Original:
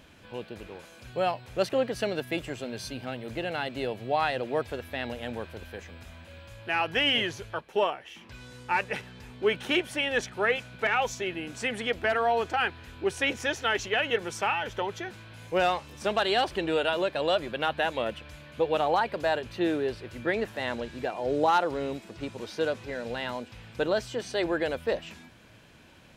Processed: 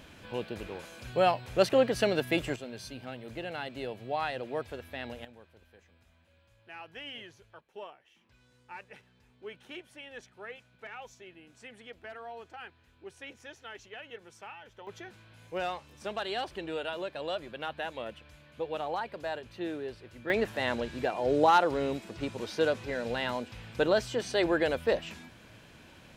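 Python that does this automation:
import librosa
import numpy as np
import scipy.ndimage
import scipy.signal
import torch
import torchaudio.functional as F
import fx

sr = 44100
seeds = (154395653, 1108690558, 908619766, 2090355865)

y = fx.gain(x, sr, db=fx.steps((0.0, 2.5), (2.56, -6.0), (5.25, -18.5), (14.87, -9.0), (20.3, 1.0)))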